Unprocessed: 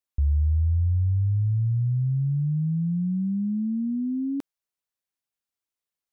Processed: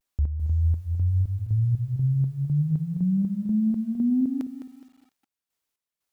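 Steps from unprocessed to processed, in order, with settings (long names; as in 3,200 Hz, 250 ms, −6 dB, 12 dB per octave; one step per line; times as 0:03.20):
hum removal 52.12 Hz, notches 3
in parallel at −1 dB: compressor whose output falls as the input rises −28 dBFS, ratio −0.5
on the sum: square-wave tremolo 2 Hz, depth 60%, duty 50%
pitch vibrato 0.69 Hz 60 cents
feedback echo at a low word length 209 ms, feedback 35%, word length 9 bits, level −10 dB
level −1 dB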